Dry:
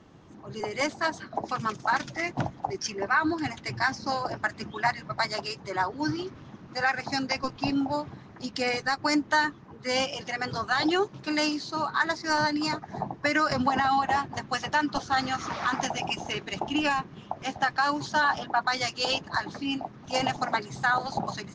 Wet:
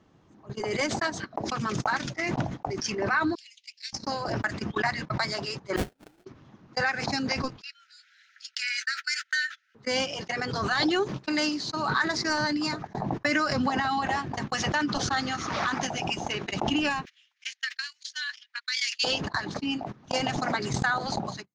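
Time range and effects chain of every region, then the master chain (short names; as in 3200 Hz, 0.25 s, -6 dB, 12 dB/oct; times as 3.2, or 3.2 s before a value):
3.35–3.93 steep high-pass 2500 Hz 48 dB/oct + short-mantissa float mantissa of 8-bit
5.76–6.25 HPF 490 Hz 6 dB/oct + sample-rate reducer 1100 Hz, jitter 20% + upward expander 2.5:1, over -40 dBFS
7.61–9.75 brick-wall FIR high-pass 1300 Hz + mismatched tape noise reduction encoder only
17.05–19.04 steep high-pass 1900 Hz + transient shaper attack +4 dB, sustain -9 dB
whole clip: gate -34 dBFS, range -47 dB; dynamic EQ 910 Hz, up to -5 dB, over -36 dBFS, Q 1.5; backwards sustainer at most 32 dB/s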